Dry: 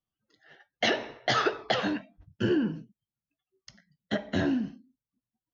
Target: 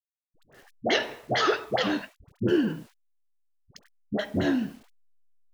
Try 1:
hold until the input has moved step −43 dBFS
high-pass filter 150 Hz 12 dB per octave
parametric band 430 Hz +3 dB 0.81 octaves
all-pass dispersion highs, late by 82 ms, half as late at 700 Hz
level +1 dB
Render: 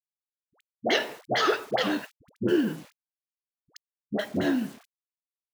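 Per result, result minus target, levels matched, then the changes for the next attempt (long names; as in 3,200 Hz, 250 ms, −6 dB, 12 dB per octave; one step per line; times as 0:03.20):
hold until the input has moved: distortion +9 dB; 125 Hz band −3.5 dB
change: hold until the input has moved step −51.5 dBFS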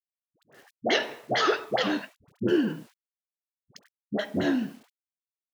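125 Hz band −3.5 dB
remove: high-pass filter 150 Hz 12 dB per octave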